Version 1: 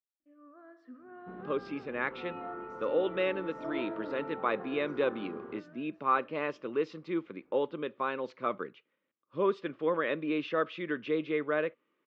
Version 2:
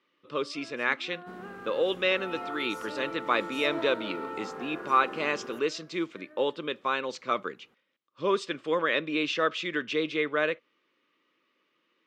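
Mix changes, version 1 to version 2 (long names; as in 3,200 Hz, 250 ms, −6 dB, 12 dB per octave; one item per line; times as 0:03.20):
speech: entry −1.15 s
second sound: remove high-frequency loss of the air 210 metres
master: remove head-to-tape spacing loss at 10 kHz 38 dB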